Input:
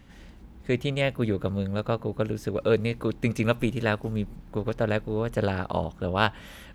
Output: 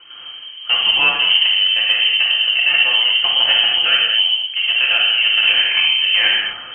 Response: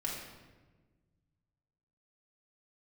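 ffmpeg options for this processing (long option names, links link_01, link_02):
-filter_complex "[0:a]volume=21dB,asoftclip=hard,volume=-21dB[link_01];[1:a]atrim=start_sample=2205,afade=type=out:start_time=0.21:duration=0.01,atrim=end_sample=9702,asetrate=26901,aresample=44100[link_02];[link_01][link_02]afir=irnorm=-1:irlink=0,lowpass=frequency=2700:width_type=q:width=0.5098,lowpass=frequency=2700:width_type=q:width=0.6013,lowpass=frequency=2700:width_type=q:width=0.9,lowpass=frequency=2700:width_type=q:width=2.563,afreqshift=-3200,volume=7dB"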